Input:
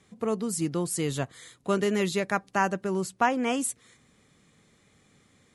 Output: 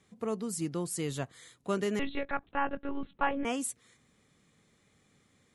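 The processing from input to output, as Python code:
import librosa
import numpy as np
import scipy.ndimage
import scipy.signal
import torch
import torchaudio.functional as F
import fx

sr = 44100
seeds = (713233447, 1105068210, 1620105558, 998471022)

y = fx.lpc_monotone(x, sr, seeds[0], pitch_hz=280.0, order=16, at=(1.99, 3.45))
y = y * librosa.db_to_amplitude(-5.5)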